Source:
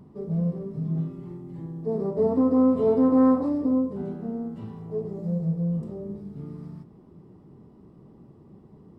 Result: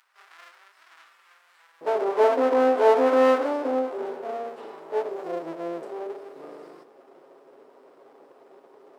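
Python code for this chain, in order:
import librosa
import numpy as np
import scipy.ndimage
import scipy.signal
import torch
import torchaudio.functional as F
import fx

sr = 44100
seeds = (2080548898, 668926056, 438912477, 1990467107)

y = fx.lower_of_two(x, sr, delay_ms=7.4)
y = fx.highpass(y, sr, hz=fx.steps((0.0, 1400.0), (1.81, 410.0)), slope=24)
y = y * librosa.db_to_amplitude(7.5)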